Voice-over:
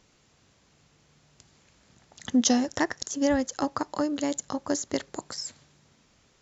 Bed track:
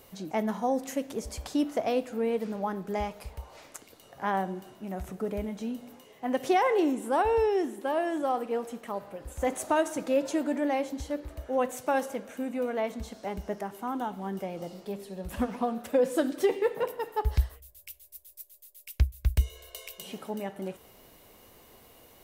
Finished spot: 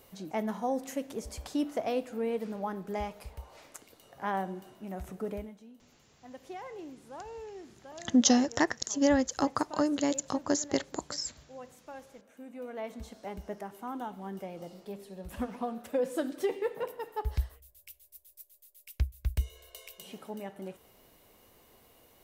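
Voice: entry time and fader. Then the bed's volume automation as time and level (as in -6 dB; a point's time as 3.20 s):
5.80 s, -0.5 dB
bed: 5.34 s -3.5 dB
5.64 s -19 dB
12.08 s -19 dB
13.01 s -5.5 dB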